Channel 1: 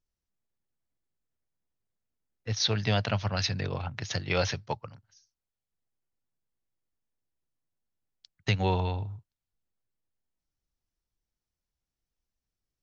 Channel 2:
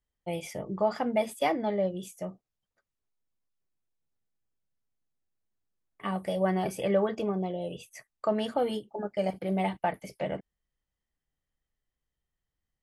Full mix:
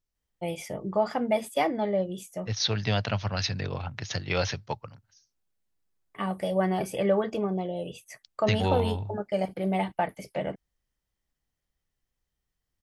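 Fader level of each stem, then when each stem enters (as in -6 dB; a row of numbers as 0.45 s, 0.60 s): 0.0 dB, +1.5 dB; 0.00 s, 0.15 s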